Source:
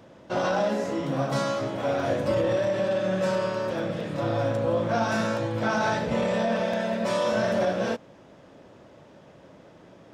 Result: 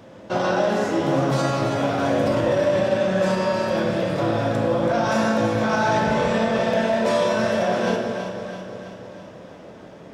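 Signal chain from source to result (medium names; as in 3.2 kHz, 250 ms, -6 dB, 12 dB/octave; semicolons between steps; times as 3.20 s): peak limiter -19.5 dBFS, peak gain reduction 5.5 dB; echo whose repeats swap between lows and highs 164 ms, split 860 Hz, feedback 76%, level -6 dB; reverberation RT60 1.5 s, pre-delay 13 ms, DRR 3 dB; trim +5 dB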